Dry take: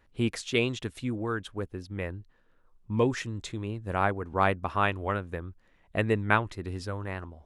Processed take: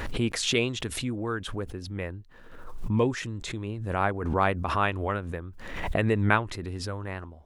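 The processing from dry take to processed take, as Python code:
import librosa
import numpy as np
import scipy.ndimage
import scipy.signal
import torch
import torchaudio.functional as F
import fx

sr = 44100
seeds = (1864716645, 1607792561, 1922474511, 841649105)

y = fx.pre_swell(x, sr, db_per_s=46.0)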